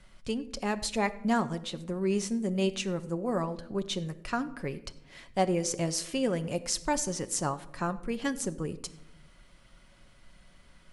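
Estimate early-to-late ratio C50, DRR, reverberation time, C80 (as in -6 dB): 16.0 dB, 9.0 dB, 0.85 s, 18.0 dB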